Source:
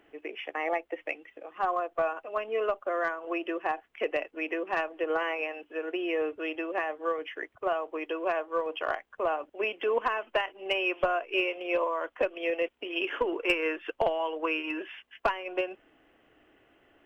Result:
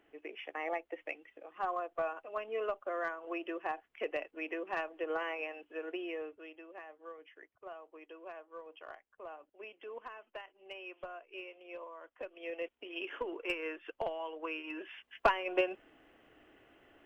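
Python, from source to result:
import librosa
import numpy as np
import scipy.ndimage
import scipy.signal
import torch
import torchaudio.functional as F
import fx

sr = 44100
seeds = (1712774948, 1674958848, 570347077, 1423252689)

y = fx.gain(x, sr, db=fx.line((5.94, -7.0), (6.55, -18.5), (12.09, -18.5), (12.61, -10.0), (14.65, -10.0), (15.26, 0.0)))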